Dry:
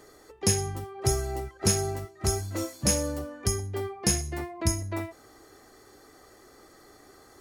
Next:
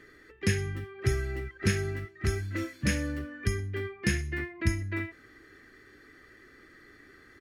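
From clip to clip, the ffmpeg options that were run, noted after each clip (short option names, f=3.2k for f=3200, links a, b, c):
-af "firequalizer=gain_entry='entry(300,0);entry(760,-17);entry(1700,9);entry(4000,-5);entry(6800,-14)':delay=0.05:min_phase=1"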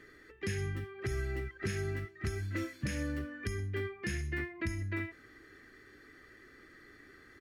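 -af "alimiter=limit=-23.5dB:level=0:latency=1:release=146,volume=-2dB"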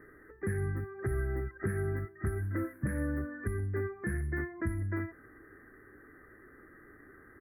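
-af "asuperstop=centerf=4500:order=12:qfactor=0.55,volume=3dB"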